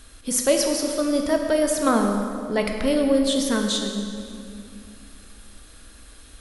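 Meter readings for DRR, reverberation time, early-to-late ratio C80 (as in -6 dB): 3.0 dB, 2.5 s, 5.0 dB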